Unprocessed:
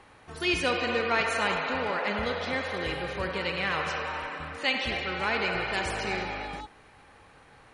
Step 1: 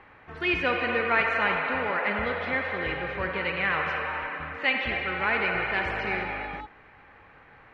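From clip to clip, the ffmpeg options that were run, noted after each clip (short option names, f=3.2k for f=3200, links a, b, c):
-af "lowpass=f=2.1k:t=q:w=1.7"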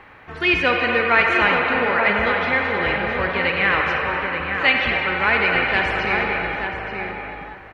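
-filter_complex "[0:a]highshelf=f=4.2k:g=7.5,asplit=2[a][b];[b]adelay=879,lowpass=f=2k:p=1,volume=-4.5dB,asplit=2[c][d];[d]adelay=879,lowpass=f=2k:p=1,volume=0.22,asplit=2[e][f];[f]adelay=879,lowpass=f=2k:p=1,volume=0.22[g];[a][c][e][g]amix=inputs=4:normalize=0,volume=6.5dB"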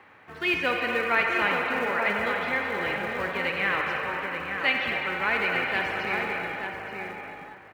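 -filter_complex "[0:a]acrossover=split=480[a][b];[a]acrusher=bits=4:mode=log:mix=0:aa=0.000001[c];[c][b]amix=inputs=2:normalize=0,highpass=120,volume=-7.5dB"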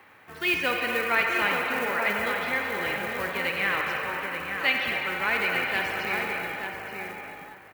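-af "aemphasis=mode=production:type=50fm,volume=-1dB"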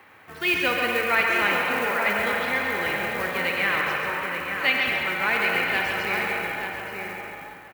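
-af "aecho=1:1:136:0.501,volume=2dB"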